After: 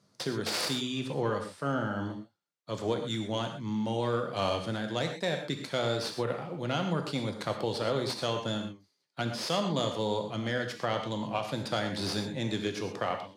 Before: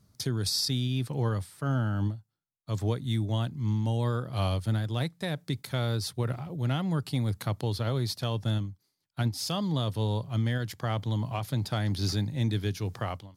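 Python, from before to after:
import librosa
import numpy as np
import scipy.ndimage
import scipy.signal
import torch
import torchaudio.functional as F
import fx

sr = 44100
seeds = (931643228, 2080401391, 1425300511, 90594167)

y = fx.tracing_dist(x, sr, depth_ms=0.18)
y = fx.bandpass_edges(y, sr, low_hz=260.0, high_hz=6900.0)
y = fx.peak_eq(y, sr, hz=530.0, db=4.5, octaves=0.34)
y = fx.rev_gated(y, sr, seeds[0], gate_ms=150, shape='flat', drr_db=4.0)
y = y * 10.0 ** (2.0 / 20.0)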